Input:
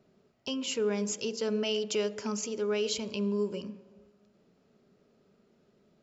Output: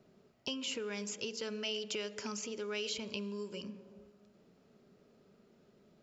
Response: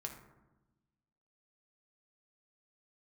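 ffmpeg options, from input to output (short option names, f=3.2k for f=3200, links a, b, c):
-filter_complex "[0:a]acrossover=split=1500|3400[a][b][c];[a]acompressor=threshold=-42dB:ratio=4[d];[b]acompressor=threshold=-41dB:ratio=4[e];[c]acompressor=threshold=-45dB:ratio=4[f];[d][e][f]amix=inputs=3:normalize=0,volume=1dB"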